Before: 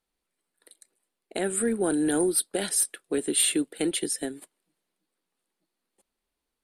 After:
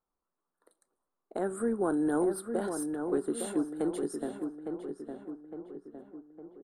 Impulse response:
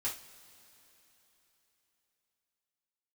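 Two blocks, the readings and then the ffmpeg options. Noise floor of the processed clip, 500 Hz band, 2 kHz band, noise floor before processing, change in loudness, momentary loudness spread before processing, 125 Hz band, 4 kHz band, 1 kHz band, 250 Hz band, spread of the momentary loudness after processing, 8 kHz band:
under -85 dBFS, -2.0 dB, -9.5 dB, -84 dBFS, -7.0 dB, 9 LU, -3.5 dB, -21.0 dB, +0.5 dB, -2.5 dB, 18 LU, -17.5 dB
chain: -filter_complex "[0:a]highshelf=f=1700:t=q:w=3:g=-13,asplit=2[s0][s1];[s1]adelay=859,lowpass=f=1900:p=1,volume=0.501,asplit=2[s2][s3];[s3]adelay=859,lowpass=f=1900:p=1,volume=0.53,asplit=2[s4][s5];[s5]adelay=859,lowpass=f=1900:p=1,volume=0.53,asplit=2[s6][s7];[s7]adelay=859,lowpass=f=1900:p=1,volume=0.53,asplit=2[s8][s9];[s9]adelay=859,lowpass=f=1900:p=1,volume=0.53,asplit=2[s10][s11];[s11]adelay=859,lowpass=f=1900:p=1,volume=0.53,asplit=2[s12][s13];[s13]adelay=859,lowpass=f=1900:p=1,volume=0.53[s14];[s0][s2][s4][s6][s8][s10][s12][s14]amix=inputs=8:normalize=0,asplit=2[s15][s16];[1:a]atrim=start_sample=2205,afade=t=out:st=0.37:d=0.01,atrim=end_sample=16758[s17];[s16][s17]afir=irnorm=-1:irlink=0,volume=0.119[s18];[s15][s18]amix=inputs=2:normalize=0,volume=0.562"

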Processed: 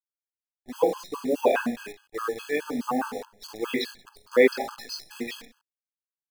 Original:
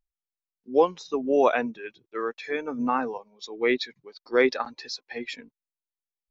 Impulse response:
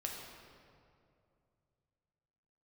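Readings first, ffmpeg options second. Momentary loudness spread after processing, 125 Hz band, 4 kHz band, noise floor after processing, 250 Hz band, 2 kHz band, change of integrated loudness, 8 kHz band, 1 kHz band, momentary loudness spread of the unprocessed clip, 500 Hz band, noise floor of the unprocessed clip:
17 LU, 0.0 dB, 0.0 dB, under -85 dBFS, -0.5 dB, -0.5 dB, -1.0 dB, no reading, -3.0 dB, 15 LU, -0.5 dB, under -85 dBFS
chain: -filter_complex "[0:a]highpass=120,asplit=2[s0][s1];[s1]aecho=0:1:20|46|79.8|123.7|180.9:0.631|0.398|0.251|0.158|0.1[s2];[s0][s2]amix=inputs=2:normalize=0,adynamicequalizer=threshold=0.0141:dfrequency=200:dqfactor=1.6:tfrequency=200:tqfactor=1.6:attack=5:release=100:ratio=0.375:range=1.5:mode=boostabove:tftype=bell,acrusher=bits=7:dc=4:mix=0:aa=0.000001,afftfilt=real='re*gt(sin(2*PI*4.8*pts/sr)*(1-2*mod(floor(b*sr/1024/840),2)),0)':imag='im*gt(sin(2*PI*4.8*pts/sr)*(1-2*mod(floor(b*sr/1024/840),2)),0)':win_size=1024:overlap=0.75"

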